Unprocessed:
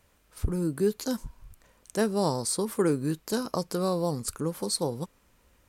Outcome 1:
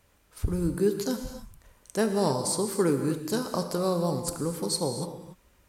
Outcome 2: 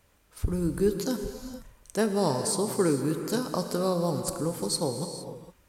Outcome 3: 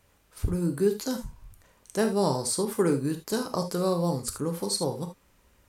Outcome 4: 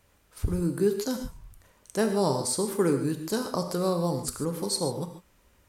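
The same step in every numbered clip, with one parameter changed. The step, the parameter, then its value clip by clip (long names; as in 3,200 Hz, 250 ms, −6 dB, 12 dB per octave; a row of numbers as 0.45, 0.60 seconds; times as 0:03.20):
reverb whose tail is shaped and stops, gate: 310, 490, 100, 170 milliseconds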